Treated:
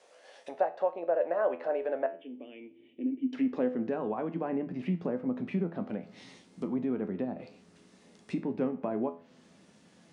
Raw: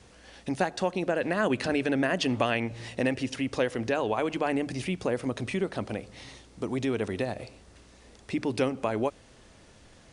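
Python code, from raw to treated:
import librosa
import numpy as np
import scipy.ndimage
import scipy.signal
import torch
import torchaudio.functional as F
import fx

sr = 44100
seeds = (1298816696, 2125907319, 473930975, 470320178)

y = fx.formant_cascade(x, sr, vowel='i', at=(2.06, 3.33))
y = fx.env_lowpass_down(y, sr, base_hz=1200.0, full_db=-27.0)
y = fx.comb_fb(y, sr, f0_hz=84.0, decay_s=0.36, harmonics='all', damping=0.0, mix_pct=70)
y = fx.filter_sweep_highpass(y, sr, from_hz=570.0, to_hz=190.0, start_s=2.08, end_s=3.95, q=3.2)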